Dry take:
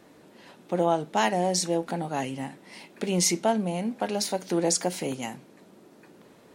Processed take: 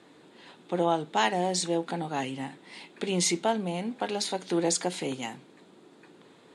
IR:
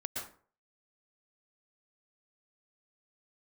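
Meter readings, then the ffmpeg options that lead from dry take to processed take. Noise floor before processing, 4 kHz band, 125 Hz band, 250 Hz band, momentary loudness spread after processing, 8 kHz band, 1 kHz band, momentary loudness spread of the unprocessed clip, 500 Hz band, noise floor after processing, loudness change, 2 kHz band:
-55 dBFS, -0.5 dB, -3.0 dB, -2.0 dB, 13 LU, -3.0 dB, -1.0 dB, 13 LU, -2.5 dB, -56 dBFS, -2.0 dB, 0.0 dB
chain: -af "highpass=130,equalizer=f=210:t=q:w=4:g=-5,equalizer=f=600:t=q:w=4:g=-6,equalizer=f=3600:t=q:w=4:g=6,equalizer=f=5700:t=q:w=4:g=-7,lowpass=f=9100:w=0.5412,lowpass=f=9100:w=1.3066"

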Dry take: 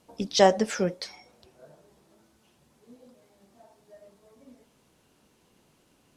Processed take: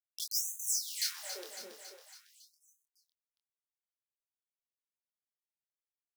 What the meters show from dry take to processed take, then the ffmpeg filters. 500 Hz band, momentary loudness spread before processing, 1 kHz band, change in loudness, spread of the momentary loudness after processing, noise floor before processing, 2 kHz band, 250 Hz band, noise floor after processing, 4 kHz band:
-28.0 dB, 19 LU, -28.5 dB, -10.0 dB, 19 LU, -66 dBFS, -13.5 dB, -31.5 dB, under -85 dBFS, -4.5 dB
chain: -filter_complex "[0:a]aemphasis=mode=production:type=riaa,acompressor=threshold=0.02:ratio=1.5,acrusher=bits=5:mix=0:aa=0.000001,aeval=exprs='0.0562*(abs(mod(val(0)/0.0562+3,4)-2)-1)':c=same,asplit=2[s0][s1];[s1]adelay=25,volume=0.631[s2];[s0][s2]amix=inputs=2:normalize=0,aecho=1:1:277|554|831|1108|1385|1662|1939:0.299|0.179|0.107|0.0645|0.0387|0.0232|0.0139,afftfilt=real='re*gte(b*sr/1024,210*pow(6100/210,0.5+0.5*sin(2*PI*0.45*pts/sr)))':imag='im*gte(b*sr/1024,210*pow(6100/210,0.5+0.5*sin(2*PI*0.45*pts/sr)))':win_size=1024:overlap=0.75"

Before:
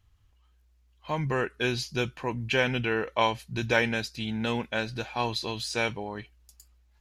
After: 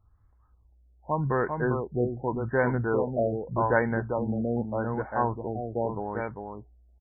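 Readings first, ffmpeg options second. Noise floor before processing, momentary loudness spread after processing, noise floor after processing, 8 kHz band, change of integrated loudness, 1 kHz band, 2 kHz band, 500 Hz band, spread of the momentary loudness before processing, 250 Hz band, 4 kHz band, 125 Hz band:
-64 dBFS, 8 LU, -62 dBFS, under -35 dB, +0.5 dB, +2.0 dB, -4.0 dB, +3.5 dB, 8 LU, +2.5 dB, under -40 dB, +3.0 dB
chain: -af "highshelf=f=1700:t=q:w=1.5:g=-8.5,aecho=1:1:397:0.562,afftfilt=real='re*lt(b*sr/1024,740*pow(2300/740,0.5+0.5*sin(2*PI*0.84*pts/sr)))':imag='im*lt(b*sr/1024,740*pow(2300/740,0.5+0.5*sin(2*PI*0.84*pts/sr)))':win_size=1024:overlap=0.75,volume=1.19"

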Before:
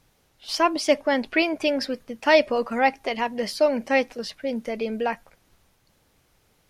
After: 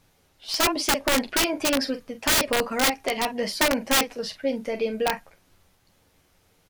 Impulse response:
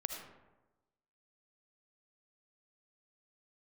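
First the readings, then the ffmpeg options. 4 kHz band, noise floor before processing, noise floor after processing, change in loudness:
+5.5 dB, -65 dBFS, -64 dBFS, 0.0 dB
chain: -af "aecho=1:1:11|45:0.447|0.282,aeval=exprs='(mod(5.31*val(0)+1,2)-1)/5.31':c=same"

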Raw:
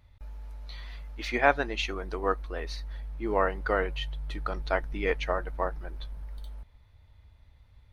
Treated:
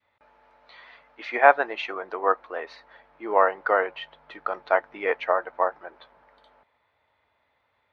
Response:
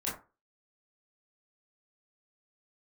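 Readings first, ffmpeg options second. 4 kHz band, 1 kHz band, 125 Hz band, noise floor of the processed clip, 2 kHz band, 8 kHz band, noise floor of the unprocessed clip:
-3.0 dB, +8.0 dB, under -20 dB, -72 dBFS, +5.0 dB, no reading, -59 dBFS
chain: -af "adynamicequalizer=threshold=0.01:dfrequency=780:dqfactor=0.75:tfrequency=780:tqfactor=0.75:attack=5:release=100:ratio=0.375:range=2.5:mode=boostabove:tftype=bell,highpass=520,lowpass=2200,volume=1.68"

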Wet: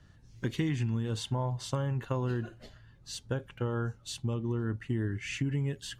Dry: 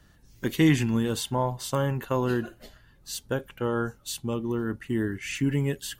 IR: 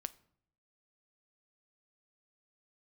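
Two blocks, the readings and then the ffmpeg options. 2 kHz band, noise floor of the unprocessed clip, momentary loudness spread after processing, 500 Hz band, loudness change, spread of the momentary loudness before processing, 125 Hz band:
-8.0 dB, -58 dBFS, 7 LU, -8.0 dB, -6.0 dB, 10 LU, -2.0 dB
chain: -af "lowpass=6900,equalizer=f=110:t=o:w=0.81:g=10,acompressor=threshold=0.0631:ratio=6,volume=0.668"

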